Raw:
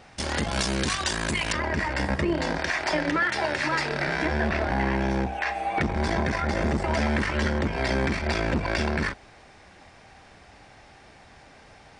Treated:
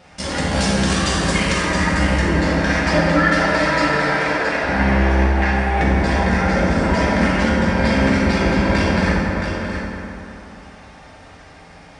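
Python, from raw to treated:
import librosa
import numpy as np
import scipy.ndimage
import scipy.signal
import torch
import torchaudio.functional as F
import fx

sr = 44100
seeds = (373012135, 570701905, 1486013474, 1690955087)

p1 = fx.highpass(x, sr, hz=450.0, slope=12, at=(3.98, 4.64))
p2 = p1 + fx.echo_single(p1, sr, ms=671, db=-7.0, dry=0)
y = fx.rev_fdn(p2, sr, rt60_s=3.1, lf_ratio=1.0, hf_ratio=0.45, size_ms=33.0, drr_db=-6.5)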